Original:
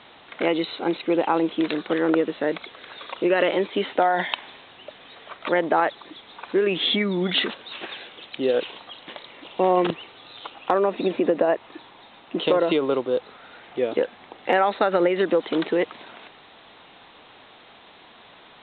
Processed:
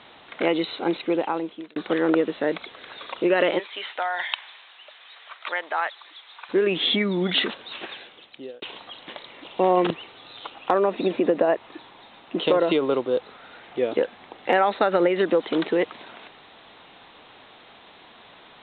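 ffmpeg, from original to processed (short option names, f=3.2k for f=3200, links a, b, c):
-filter_complex "[0:a]asplit=3[a][b][c];[a]afade=t=out:st=3.58:d=0.02[d];[b]highpass=1.1k,afade=t=in:st=3.58:d=0.02,afade=t=out:st=6.48:d=0.02[e];[c]afade=t=in:st=6.48:d=0.02[f];[d][e][f]amix=inputs=3:normalize=0,asplit=3[g][h][i];[g]atrim=end=1.76,asetpts=PTS-STARTPTS,afade=t=out:st=0.99:d=0.77[j];[h]atrim=start=1.76:end=8.62,asetpts=PTS-STARTPTS,afade=t=in:d=0.004:c=hsin,afade=t=out:st=5.99:d=0.87[k];[i]atrim=start=8.62,asetpts=PTS-STARTPTS,afade=t=in:d=0.004:c=hsin[l];[j][k][l]concat=n=3:v=0:a=1"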